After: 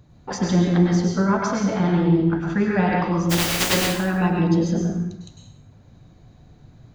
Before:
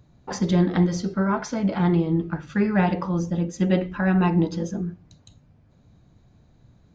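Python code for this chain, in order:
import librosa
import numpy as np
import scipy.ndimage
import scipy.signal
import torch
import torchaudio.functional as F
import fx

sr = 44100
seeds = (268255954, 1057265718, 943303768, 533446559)

y = fx.spec_flatten(x, sr, power=0.19, at=(3.29, 3.73), fade=0.02)
y = fx.rider(y, sr, range_db=4, speed_s=0.5)
y = fx.rev_plate(y, sr, seeds[0], rt60_s=0.73, hf_ratio=1.0, predelay_ms=90, drr_db=-0.5)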